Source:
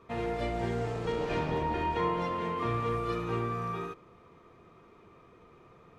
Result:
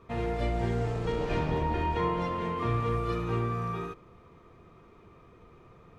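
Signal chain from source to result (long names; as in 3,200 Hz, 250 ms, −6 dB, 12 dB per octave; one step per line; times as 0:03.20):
low-shelf EQ 110 Hz +10.5 dB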